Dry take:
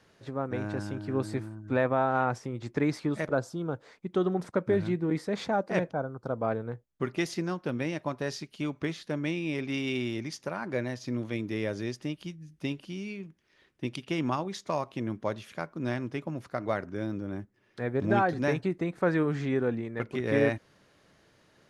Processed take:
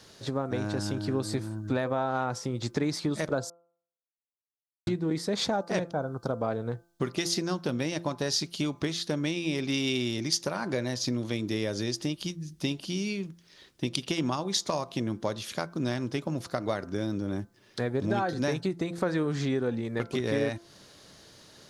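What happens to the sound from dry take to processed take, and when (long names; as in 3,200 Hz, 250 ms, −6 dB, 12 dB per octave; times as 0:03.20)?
0:03.50–0:04.87: silence
whole clip: downward compressor 3 to 1, threshold −35 dBFS; high shelf with overshoot 3,100 Hz +7.5 dB, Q 1.5; hum removal 170.8 Hz, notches 9; level +7.5 dB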